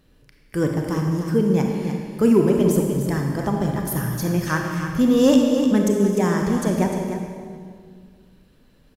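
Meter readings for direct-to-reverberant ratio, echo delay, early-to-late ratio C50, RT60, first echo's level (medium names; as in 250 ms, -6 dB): 1.0 dB, 301 ms, 2.0 dB, 2.0 s, -9.0 dB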